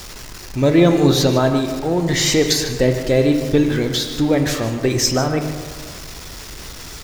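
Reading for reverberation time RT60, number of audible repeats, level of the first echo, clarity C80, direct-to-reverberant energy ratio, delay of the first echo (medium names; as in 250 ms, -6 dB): 1.9 s, 1, -12.5 dB, 7.5 dB, 5.5 dB, 151 ms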